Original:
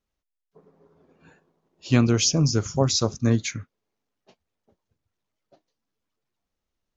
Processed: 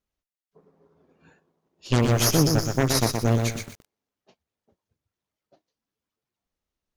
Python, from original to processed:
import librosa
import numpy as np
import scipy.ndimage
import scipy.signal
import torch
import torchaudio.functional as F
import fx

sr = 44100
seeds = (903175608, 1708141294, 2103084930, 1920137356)

y = fx.cheby_harmonics(x, sr, harmonics=(3, 5, 6), levels_db=(-36, -21, -8), full_scale_db=-5.5)
y = fx.echo_crushed(y, sr, ms=122, feedback_pct=35, bits=6, wet_db=-4.5)
y = y * 10.0 ** (-5.5 / 20.0)